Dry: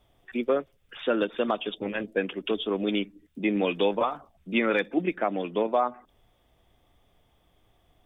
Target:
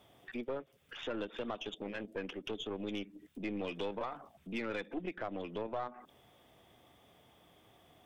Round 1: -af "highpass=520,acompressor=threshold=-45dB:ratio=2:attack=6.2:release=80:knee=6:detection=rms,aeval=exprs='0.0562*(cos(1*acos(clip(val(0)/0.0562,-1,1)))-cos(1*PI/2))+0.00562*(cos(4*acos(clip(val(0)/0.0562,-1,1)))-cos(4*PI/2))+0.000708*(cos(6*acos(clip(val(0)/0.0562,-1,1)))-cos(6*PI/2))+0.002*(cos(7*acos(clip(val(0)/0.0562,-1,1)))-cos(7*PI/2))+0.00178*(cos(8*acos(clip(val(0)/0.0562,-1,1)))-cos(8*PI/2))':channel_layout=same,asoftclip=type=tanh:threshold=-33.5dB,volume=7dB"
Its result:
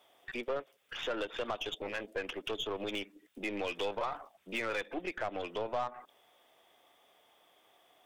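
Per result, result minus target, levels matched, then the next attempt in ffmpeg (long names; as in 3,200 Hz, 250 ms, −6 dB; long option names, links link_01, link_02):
downward compressor: peak gain reduction −6.5 dB; 125 Hz band −6.5 dB
-af "highpass=520,acompressor=threshold=-56dB:ratio=2:attack=6.2:release=80:knee=6:detection=rms,aeval=exprs='0.0562*(cos(1*acos(clip(val(0)/0.0562,-1,1)))-cos(1*PI/2))+0.00562*(cos(4*acos(clip(val(0)/0.0562,-1,1)))-cos(4*PI/2))+0.000708*(cos(6*acos(clip(val(0)/0.0562,-1,1)))-cos(6*PI/2))+0.002*(cos(7*acos(clip(val(0)/0.0562,-1,1)))-cos(7*PI/2))+0.00178*(cos(8*acos(clip(val(0)/0.0562,-1,1)))-cos(8*PI/2))':channel_layout=same,asoftclip=type=tanh:threshold=-33.5dB,volume=7dB"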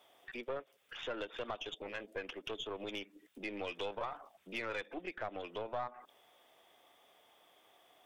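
125 Hz band −5.0 dB
-af "highpass=130,acompressor=threshold=-56dB:ratio=2:attack=6.2:release=80:knee=6:detection=rms,aeval=exprs='0.0562*(cos(1*acos(clip(val(0)/0.0562,-1,1)))-cos(1*PI/2))+0.00562*(cos(4*acos(clip(val(0)/0.0562,-1,1)))-cos(4*PI/2))+0.000708*(cos(6*acos(clip(val(0)/0.0562,-1,1)))-cos(6*PI/2))+0.002*(cos(7*acos(clip(val(0)/0.0562,-1,1)))-cos(7*PI/2))+0.00178*(cos(8*acos(clip(val(0)/0.0562,-1,1)))-cos(8*PI/2))':channel_layout=same,asoftclip=type=tanh:threshold=-33.5dB,volume=7dB"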